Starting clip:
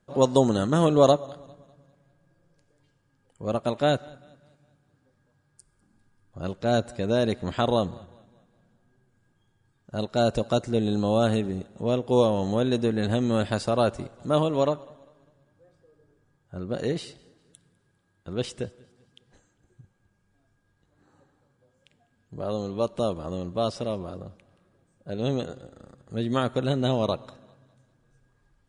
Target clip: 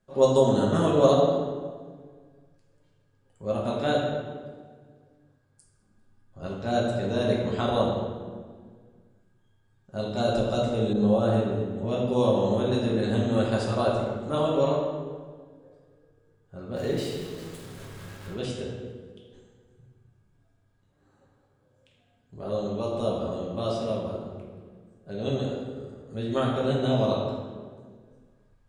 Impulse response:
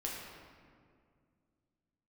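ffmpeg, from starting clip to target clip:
-filter_complex "[0:a]asettb=1/sr,asplit=3[link_01][link_02][link_03];[link_01]atrim=end=16.764[link_04];[link_02]atrim=start=16.76:end=18.34,asetpts=PTS-STARTPTS,afade=type=in:duration=0.004:curve=qsin,afade=type=out:start_time=1.576:duration=0.004:curve=qsin,aeval=exprs='val(0)+0.5*0.0141*sgn(val(0))':channel_layout=same[link_05];[link_03]atrim=start=18.336[link_06];[link_04][link_05]acrossfade=duration=0.004:curve1=hsin:curve2=qsin[link_07];[link_07][link_06]acrossfade=duration=0.004:curve1=qsin:curve2=hsin[link_08];[1:a]atrim=start_sample=2205,asetrate=61740,aresample=44100[link_09];[link_08][link_09]afir=irnorm=-1:irlink=0,asettb=1/sr,asplit=3[link_10][link_11][link_12];[link_10]atrim=end=10.934[link_13];[link_11]atrim=start=10.93:end=11.91,asetpts=PTS-STARTPTS,afade=type=in:duration=0.004:curve=qsin,afade=type=out:start_time=0.976:duration=0.004:curve=qsin,adynamicequalizer=threshold=0.00708:dfrequency=1700:dqfactor=0.7:tfrequency=1700:tqfactor=0.7:attack=5:release=100:ratio=0.375:range=3:mode=cutabove:tftype=highshelf[link_14];[link_12]atrim=start=11.906[link_15];[link_13][link_14]acrossfade=duration=0.004:curve1=hsin:curve2=qsin[link_16];[link_16][link_15]acrossfade=duration=0.004:curve1=qsin:curve2=hsin"

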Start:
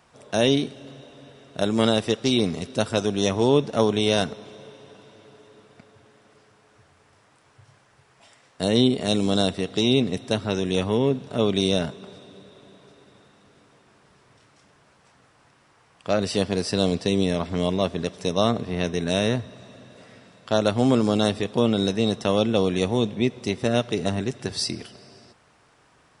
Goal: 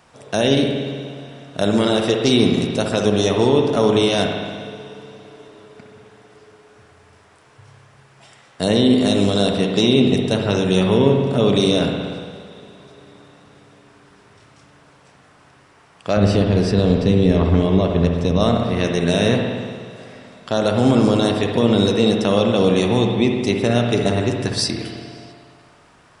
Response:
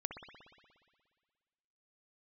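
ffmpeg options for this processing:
-filter_complex "[0:a]asettb=1/sr,asplit=3[link_01][link_02][link_03];[link_01]atrim=end=16.174[link_04];[link_02]atrim=start=16.17:end=18.4,asetpts=PTS-STARTPTS,afade=type=in:duration=0.004:curve=qsin,afade=type=out:start_time=2.226:duration=0.004:curve=qsin,aemphasis=mode=reproduction:type=bsi[link_05];[link_03]atrim=start=18.396[link_06];[link_04][link_05]acrossfade=duration=0.004:curve1=hsin:curve2=qsin[link_07];[link_07][link_06]acrossfade=duration=0.004:curve1=qsin:curve2=hsin,alimiter=limit=-11dB:level=0:latency=1:release=55[link_08];[1:a]atrim=start_sample=2205[link_09];[link_08][link_09]afir=irnorm=-1:irlink=0,volume=8dB"

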